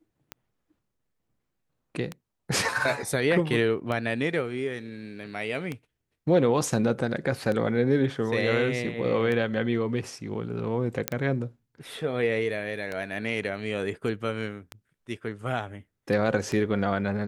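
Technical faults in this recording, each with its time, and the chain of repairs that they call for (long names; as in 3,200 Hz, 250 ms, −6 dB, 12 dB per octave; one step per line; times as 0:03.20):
scratch tick 33 1/3 rpm −18 dBFS
0:11.08: click −6 dBFS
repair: click removal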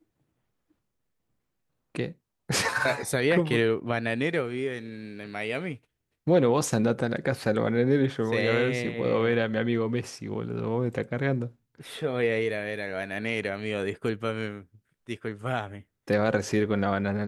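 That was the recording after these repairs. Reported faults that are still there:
none of them is left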